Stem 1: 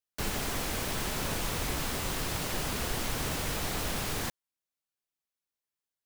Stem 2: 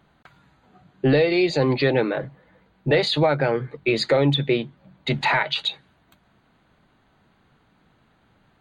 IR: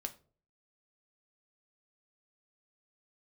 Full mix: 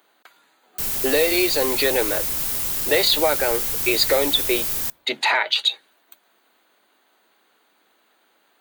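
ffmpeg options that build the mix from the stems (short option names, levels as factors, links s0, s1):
-filter_complex "[0:a]adelay=600,volume=0.631,asplit=2[s0][s1];[s1]volume=0.211[s2];[1:a]highpass=f=320:w=0.5412,highpass=f=320:w=1.3066,volume=1[s3];[2:a]atrim=start_sample=2205[s4];[s2][s4]afir=irnorm=-1:irlink=0[s5];[s0][s3][s5]amix=inputs=3:normalize=0,aemphasis=mode=production:type=75fm"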